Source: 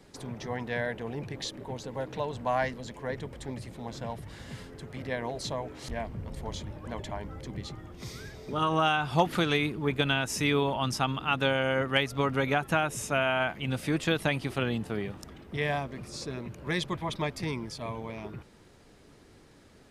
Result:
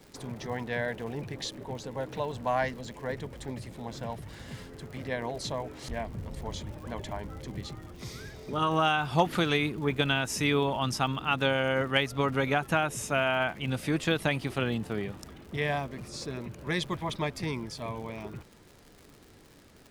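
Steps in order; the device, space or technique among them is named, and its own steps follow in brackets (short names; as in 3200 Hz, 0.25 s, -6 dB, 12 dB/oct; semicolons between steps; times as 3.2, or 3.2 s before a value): vinyl LP (crackle 110/s -42 dBFS; pink noise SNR 39 dB)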